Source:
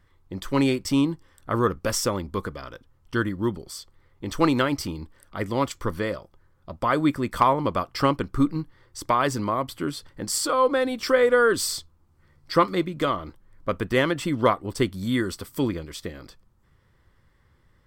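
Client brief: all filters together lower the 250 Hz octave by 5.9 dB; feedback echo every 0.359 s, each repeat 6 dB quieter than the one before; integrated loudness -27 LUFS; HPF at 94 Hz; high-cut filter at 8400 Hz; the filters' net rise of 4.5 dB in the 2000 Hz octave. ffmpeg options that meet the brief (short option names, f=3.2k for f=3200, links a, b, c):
-af "highpass=94,lowpass=8.4k,equalizer=f=250:t=o:g=-7.5,equalizer=f=2k:t=o:g=6,aecho=1:1:359|718|1077|1436|1795|2154:0.501|0.251|0.125|0.0626|0.0313|0.0157,volume=-2.5dB"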